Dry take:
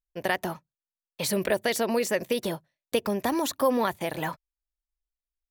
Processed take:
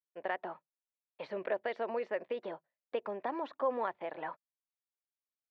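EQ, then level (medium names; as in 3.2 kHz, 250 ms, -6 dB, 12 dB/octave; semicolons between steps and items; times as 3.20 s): high-pass 540 Hz 12 dB/octave; distance through air 340 m; tape spacing loss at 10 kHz 30 dB; -2.5 dB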